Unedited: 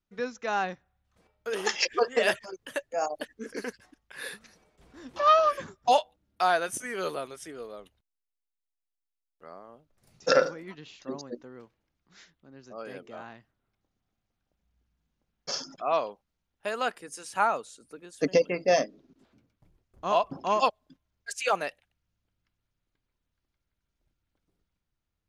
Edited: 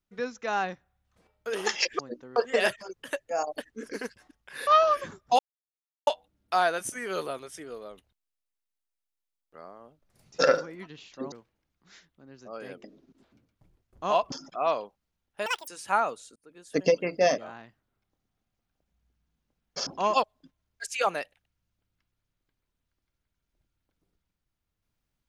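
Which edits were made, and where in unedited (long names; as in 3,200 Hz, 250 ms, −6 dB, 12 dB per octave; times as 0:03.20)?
0:04.30–0:05.23: remove
0:05.95: splice in silence 0.68 s
0:11.20–0:11.57: move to 0:01.99
0:13.09–0:15.58: swap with 0:18.85–0:20.33
0:16.72–0:17.15: play speed 198%
0:17.83–0:18.35: fade in equal-power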